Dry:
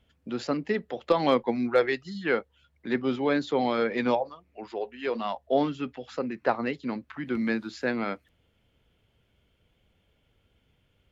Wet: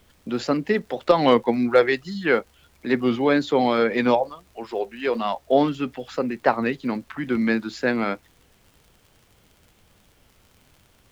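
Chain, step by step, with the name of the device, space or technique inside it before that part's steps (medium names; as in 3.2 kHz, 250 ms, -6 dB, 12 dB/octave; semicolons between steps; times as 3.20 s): warped LP (warped record 33 1/3 rpm, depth 100 cents; crackle -48 dBFS; pink noise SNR 37 dB); trim +6 dB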